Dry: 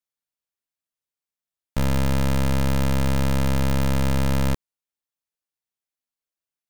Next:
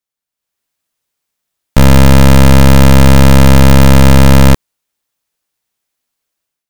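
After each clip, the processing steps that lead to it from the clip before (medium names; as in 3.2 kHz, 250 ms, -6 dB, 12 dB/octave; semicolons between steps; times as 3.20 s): level rider gain up to 12 dB; trim +5 dB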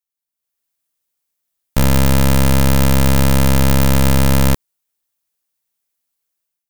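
treble shelf 7.9 kHz +10 dB; trim -8.5 dB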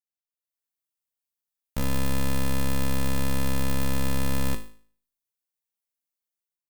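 feedback comb 53 Hz, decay 0.47 s, harmonics all, mix 80%; trim -6 dB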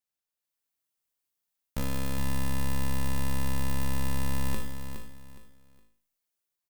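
reverse; compression 6:1, threshold -29 dBFS, peak gain reduction 9 dB; reverse; feedback delay 415 ms, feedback 28%, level -8.5 dB; trim +3.5 dB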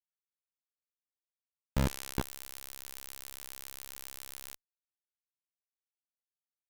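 level-controlled noise filter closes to 350 Hz, open at -23.5 dBFS; peak limiter -21 dBFS, peak gain reduction 4.5 dB; Schmitt trigger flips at -42 dBFS; trim +4.5 dB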